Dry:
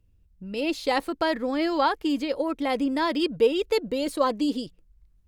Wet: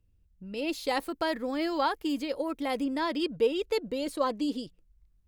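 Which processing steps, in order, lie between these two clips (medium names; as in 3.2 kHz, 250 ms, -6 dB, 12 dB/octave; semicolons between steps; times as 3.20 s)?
0.68–2.85 s: treble shelf 10 kHz +11 dB; trim -5 dB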